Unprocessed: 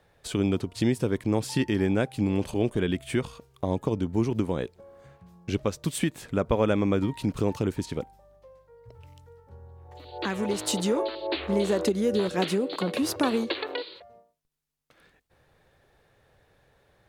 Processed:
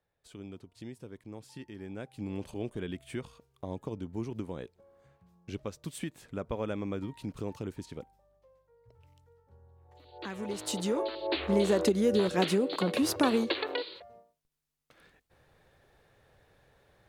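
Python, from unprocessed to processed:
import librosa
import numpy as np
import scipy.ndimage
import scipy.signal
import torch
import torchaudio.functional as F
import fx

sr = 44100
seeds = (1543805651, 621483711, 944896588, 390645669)

y = fx.gain(x, sr, db=fx.line((1.75, -20.0), (2.33, -11.0), (10.15, -11.0), (11.42, -1.0)))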